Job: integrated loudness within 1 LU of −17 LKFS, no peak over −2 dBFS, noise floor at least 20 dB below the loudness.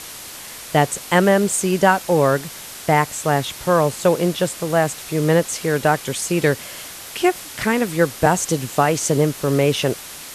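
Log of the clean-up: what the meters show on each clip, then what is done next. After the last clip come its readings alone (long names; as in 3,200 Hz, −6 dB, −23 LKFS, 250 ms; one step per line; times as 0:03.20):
background noise floor −36 dBFS; target noise floor −39 dBFS; integrated loudness −19.0 LKFS; sample peak −2.0 dBFS; target loudness −17.0 LKFS
→ broadband denoise 6 dB, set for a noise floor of −36 dBFS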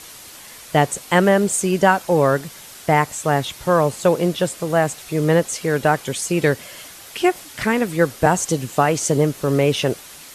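background noise floor −40 dBFS; integrated loudness −19.0 LKFS; sample peak −2.0 dBFS; target loudness −17.0 LKFS
→ level +2 dB
brickwall limiter −2 dBFS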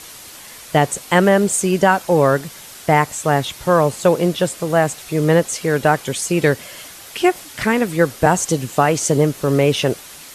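integrated loudness −17.5 LKFS; sample peak −2.0 dBFS; background noise floor −38 dBFS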